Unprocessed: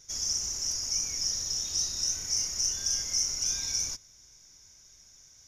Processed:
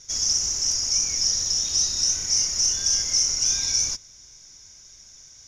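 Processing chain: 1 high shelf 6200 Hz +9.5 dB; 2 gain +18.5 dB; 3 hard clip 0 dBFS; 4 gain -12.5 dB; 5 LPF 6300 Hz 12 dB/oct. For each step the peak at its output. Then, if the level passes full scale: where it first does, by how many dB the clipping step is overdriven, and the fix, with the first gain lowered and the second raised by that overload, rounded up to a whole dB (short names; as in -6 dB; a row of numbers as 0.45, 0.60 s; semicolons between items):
-11.5, +7.0, 0.0, -12.5, -13.0 dBFS; step 2, 7.0 dB; step 2 +11.5 dB, step 4 -5.5 dB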